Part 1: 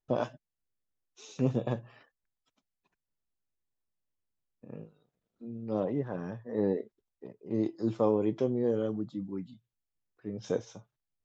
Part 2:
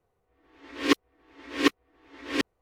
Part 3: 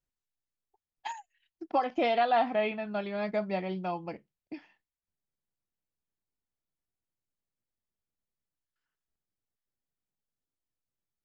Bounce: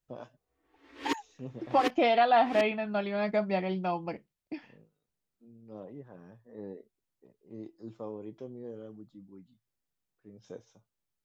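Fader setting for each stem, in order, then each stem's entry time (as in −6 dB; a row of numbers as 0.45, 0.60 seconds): −14.0, −10.5, +2.5 decibels; 0.00, 0.20, 0.00 seconds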